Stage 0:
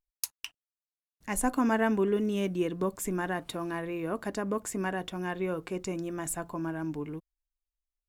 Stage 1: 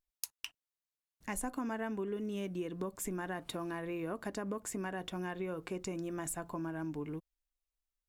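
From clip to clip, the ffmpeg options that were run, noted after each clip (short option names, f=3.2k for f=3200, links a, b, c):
-af "acompressor=threshold=-34dB:ratio=5,volume=-1.5dB"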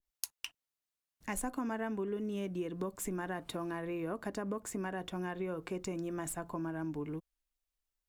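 -filter_complex "[0:a]acrossover=split=500|5500[a][b][c];[c]acrusher=bits=3:mode=log:mix=0:aa=0.000001[d];[a][b][d]amix=inputs=3:normalize=0,adynamicequalizer=threshold=0.00282:dfrequency=1800:dqfactor=0.7:tfrequency=1800:tqfactor=0.7:attack=5:release=100:ratio=0.375:range=1.5:mode=cutabove:tftype=highshelf,volume=1dB"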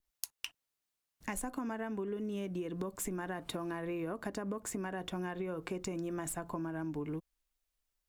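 -af "acompressor=threshold=-38dB:ratio=6,volume=3.5dB"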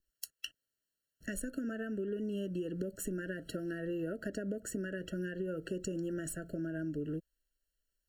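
-af "afftfilt=real='re*eq(mod(floor(b*sr/1024/660),2),0)':imag='im*eq(mod(floor(b*sr/1024/660),2),0)':win_size=1024:overlap=0.75,volume=1dB"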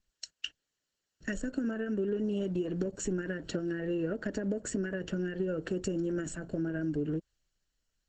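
-af "volume=5.5dB" -ar 48000 -c:a libopus -b:a 10k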